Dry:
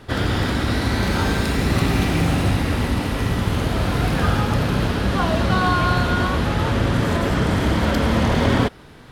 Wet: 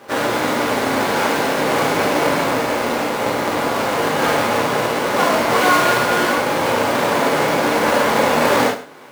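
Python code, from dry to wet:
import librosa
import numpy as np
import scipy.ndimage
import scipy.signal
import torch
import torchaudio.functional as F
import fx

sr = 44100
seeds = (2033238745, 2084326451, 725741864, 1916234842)

p1 = fx.halfwave_hold(x, sr)
p2 = scipy.signal.sosfilt(scipy.signal.butter(2, 470.0, 'highpass', fs=sr, output='sos'), p1)
p3 = fx.high_shelf(p2, sr, hz=2200.0, db=-9.5)
p4 = p3 + fx.echo_single(p3, sr, ms=101, db=-14.0, dry=0)
p5 = fx.rev_gated(p4, sr, seeds[0], gate_ms=90, shape='flat', drr_db=-2.5)
y = F.gain(torch.from_numpy(p5), 2.0).numpy()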